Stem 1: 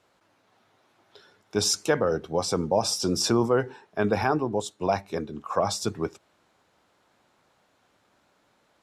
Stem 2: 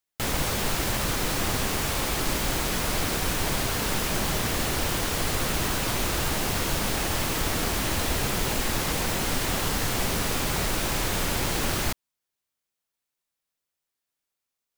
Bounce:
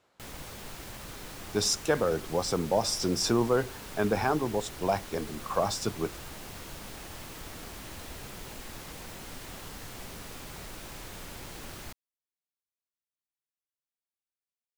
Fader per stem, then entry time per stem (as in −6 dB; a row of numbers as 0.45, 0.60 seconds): −3.0, −16.5 decibels; 0.00, 0.00 seconds